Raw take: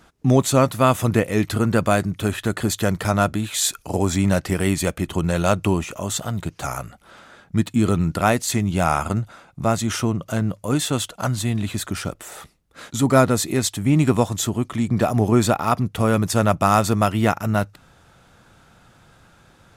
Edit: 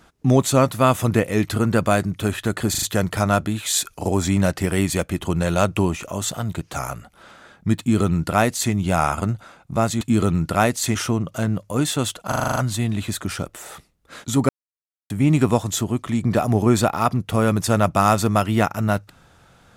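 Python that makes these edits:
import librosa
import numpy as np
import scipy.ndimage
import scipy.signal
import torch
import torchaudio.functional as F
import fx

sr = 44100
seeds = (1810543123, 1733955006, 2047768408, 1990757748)

y = fx.edit(x, sr, fx.stutter(start_s=2.7, slice_s=0.04, count=4),
    fx.duplicate(start_s=7.67, length_s=0.94, to_s=9.89),
    fx.stutter(start_s=11.22, slice_s=0.04, count=8),
    fx.silence(start_s=13.15, length_s=0.61), tone=tone)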